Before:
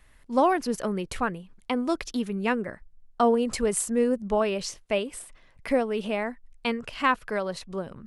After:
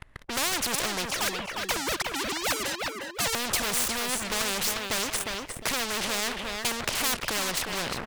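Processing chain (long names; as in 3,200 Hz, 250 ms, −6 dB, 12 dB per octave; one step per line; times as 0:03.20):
0:01.06–0:03.35: three sine waves on the formant tracks
low-pass filter 1,600 Hz 6 dB per octave
leveller curve on the samples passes 5
repeating echo 356 ms, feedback 19%, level −13 dB
every bin compressed towards the loudest bin 4 to 1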